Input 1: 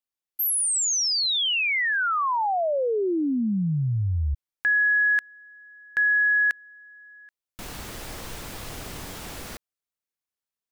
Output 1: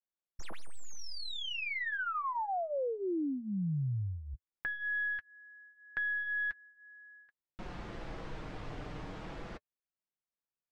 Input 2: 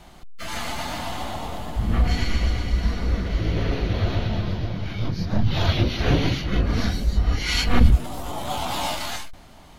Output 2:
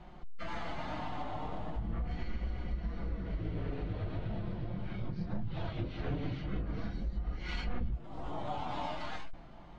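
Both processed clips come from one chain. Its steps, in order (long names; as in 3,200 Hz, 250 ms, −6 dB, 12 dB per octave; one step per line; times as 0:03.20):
stylus tracing distortion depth 0.034 ms
high-shelf EQ 2,800 Hz −11.5 dB
downward compressor 4 to 1, threshold −30 dBFS
flanger 0.4 Hz, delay 5.4 ms, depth 1.4 ms, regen −37%
high-frequency loss of the air 130 metres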